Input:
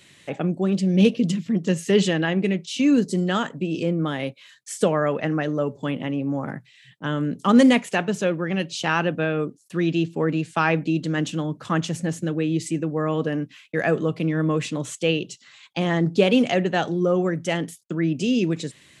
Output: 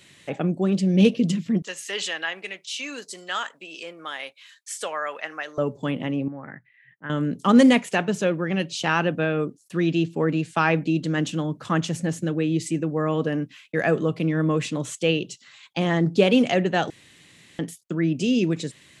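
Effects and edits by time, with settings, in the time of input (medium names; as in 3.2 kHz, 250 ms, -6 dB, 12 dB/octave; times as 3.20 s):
1.62–5.58 s: high-pass 1 kHz
6.28–7.10 s: four-pole ladder low-pass 2.1 kHz, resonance 65%
16.90–17.59 s: room tone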